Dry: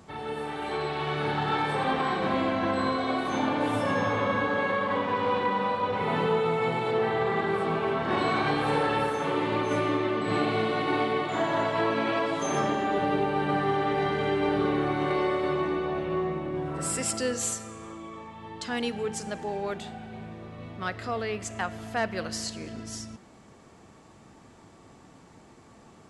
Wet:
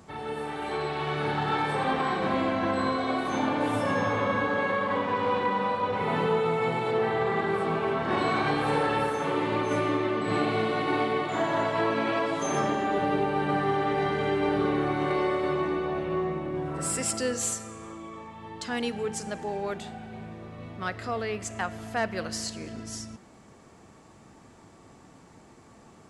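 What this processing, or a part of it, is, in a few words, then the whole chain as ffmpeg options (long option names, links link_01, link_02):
exciter from parts: -filter_complex "[0:a]asplit=2[link_01][link_02];[link_02]highpass=frequency=3100:width=0.5412,highpass=frequency=3100:width=1.3066,asoftclip=type=tanh:threshold=-31.5dB,volume=-13dB[link_03];[link_01][link_03]amix=inputs=2:normalize=0"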